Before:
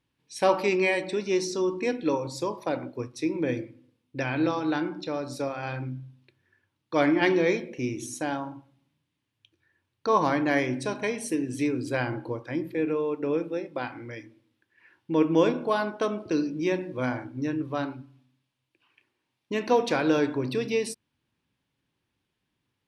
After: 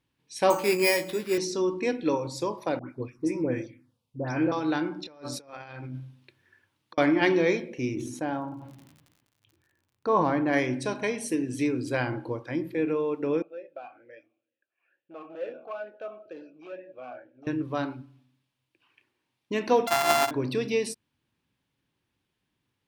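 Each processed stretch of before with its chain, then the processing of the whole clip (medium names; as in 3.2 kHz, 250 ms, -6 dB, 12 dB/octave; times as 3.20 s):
0.50–1.38 s: doubling 18 ms -6.5 dB + careless resampling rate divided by 6×, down none, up hold + three bands expanded up and down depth 40%
2.79–4.52 s: phase dispersion highs, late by 105 ms, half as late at 1.6 kHz + touch-sensitive phaser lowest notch 250 Hz, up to 3.9 kHz, full sweep at -25 dBFS
5.05–6.98 s: bass shelf 360 Hz -6 dB + compressor with a negative ratio -40 dBFS, ratio -0.5
7.94–10.52 s: peaking EQ 8.4 kHz -14.5 dB 2.8 oct + crackle 66 per s -54 dBFS + decay stretcher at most 48 dB/s
13.42–17.47 s: overload inside the chain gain 24.5 dB + talking filter a-e 2.2 Hz
19.87–20.31 s: sorted samples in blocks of 64 samples + resonant low shelf 610 Hz -8 dB, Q 3
whole clip: none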